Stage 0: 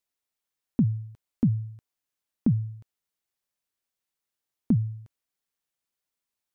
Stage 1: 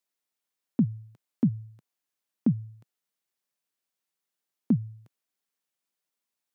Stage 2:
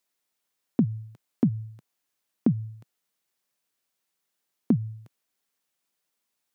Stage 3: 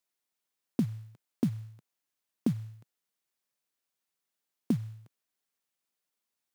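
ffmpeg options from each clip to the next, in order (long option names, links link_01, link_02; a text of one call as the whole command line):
ffmpeg -i in.wav -af "highpass=frequency=140:width=0.5412,highpass=frequency=140:width=1.3066" out.wav
ffmpeg -i in.wav -af "acompressor=threshold=-24dB:ratio=6,volume=6dB" out.wav
ffmpeg -i in.wav -af "acrusher=bits=6:mode=log:mix=0:aa=0.000001,volume=-6dB" out.wav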